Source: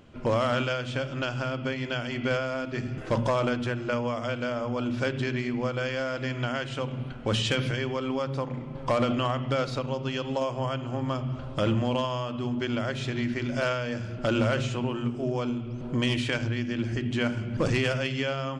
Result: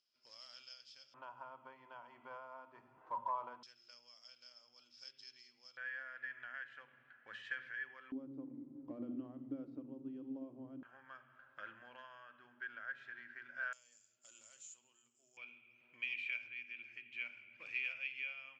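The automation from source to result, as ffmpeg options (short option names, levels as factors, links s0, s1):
-af "asetnsamples=n=441:p=0,asendcmd='1.14 bandpass f 970;3.63 bandpass f 5200;5.77 bandpass f 1700;8.12 bandpass f 290;10.83 bandpass f 1600;13.73 bandpass f 7100;15.37 bandpass f 2400',bandpass=f=5100:t=q:w=17:csg=0"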